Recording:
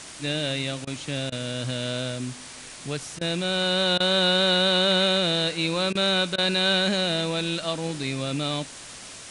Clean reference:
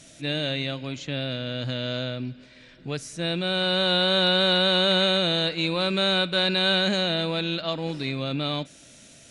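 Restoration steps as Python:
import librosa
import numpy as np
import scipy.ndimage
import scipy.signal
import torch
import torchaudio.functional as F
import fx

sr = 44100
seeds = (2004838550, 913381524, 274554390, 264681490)

y = fx.fix_interpolate(x, sr, at_s=(0.85, 1.3, 3.19, 3.98, 5.93, 6.36), length_ms=20.0)
y = fx.noise_reduce(y, sr, print_start_s=8.79, print_end_s=9.29, reduce_db=8.0)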